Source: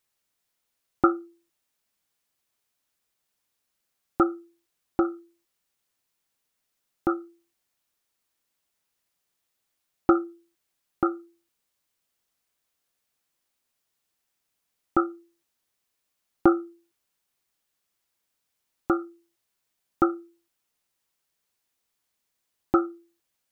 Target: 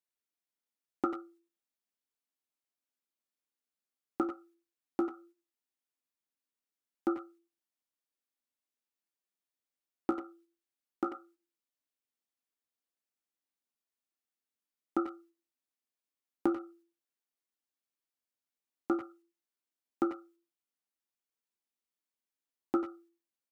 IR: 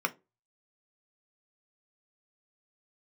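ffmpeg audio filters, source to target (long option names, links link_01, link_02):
-filter_complex "[0:a]agate=range=-8dB:threshold=-52dB:ratio=16:detection=peak,lowshelf=frequency=180:width_type=q:width=3:gain=-10,acompressor=threshold=-18dB:ratio=4,flanger=delay=9:depth=7.5:regen=-49:speed=0.14:shape=sinusoidal,asplit=2[link_01][link_02];[link_02]adelay=90,highpass=300,lowpass=3400,asoftclip=type=hard:threshold=-21dB,volume=-9dB[link_03];[link_01][link_03]amix=inputs=2:normalize=0,volume=-4.5dB"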